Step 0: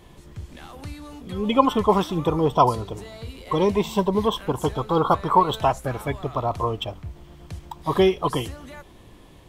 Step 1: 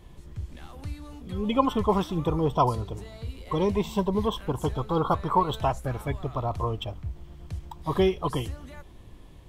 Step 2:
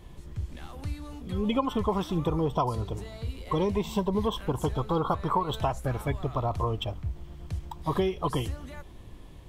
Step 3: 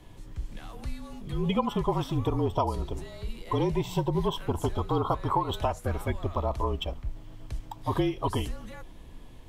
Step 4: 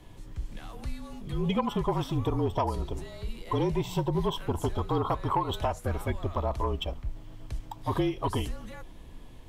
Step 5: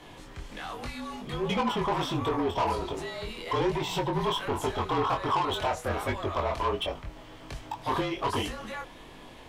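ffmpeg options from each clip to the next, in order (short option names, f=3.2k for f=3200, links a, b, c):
-af "lowshelf=f=120:g=11,volume=-6dB"
-af "acompressor=threshold=-24dB:ratio=6,volume=1.5dB"
-af "afreqshift=-39"
-af "asoftclip=type=tanh:threshold=-16dB"
-filter_complex "[0:a]asplit=2[a][b];[b]highpass=f=720:p=1,volume=21dB,asoftclip=type=tanh:threshold=-16.5dB[c];[a][c]amix=inputs=2:normalize=0,lowpass=f=3.5k:p=1,volume=-6dB,flanger=delay=20:depth=4.9:speed=1.3"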